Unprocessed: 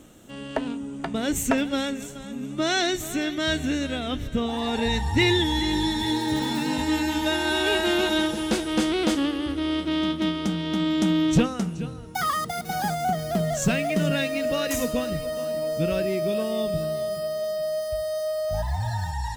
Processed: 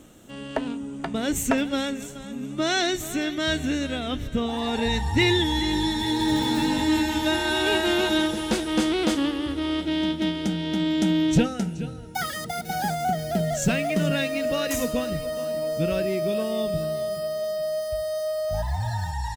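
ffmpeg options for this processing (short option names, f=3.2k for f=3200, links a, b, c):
-filter_complex "[0:a]asplit=2[a][b];[b]afade=t=in:st=5.81:d=0.01,afade=t=out:st=6.27:d=0.01,aecho=0:1:380|760|1140|1520|1900|2280|2660|3040|3420|3800|4180|4560:0.630957|0.504766|0.403813|0.32305|0.25844|0.206752|0.165402|0.132321|0.105857|0.0846857|0.0677485|0.0541988[c];[a][c]amix=inputs=2:normalize=0,asettb=1/sr,asplit=3[d][e][f];[d]atrim=end=9.814[g];[e]atrim=start=9.81:end=13.69,asetpts=PTS-STARTPTS,afade=t=in:d=0.004:c=qsin,afade=t=out:st=3.876:d=0.004:c=qsin,asuperstop=centerf=1100:order=20:qfactor=3.5[h];[f]atrim=start=13.686[i];[g][h]acrossfade=d=0.004:c1=hsin:c2=qsin[j];[j][i]acrossfade=d=0.004:c1=qsin:c2=hsin"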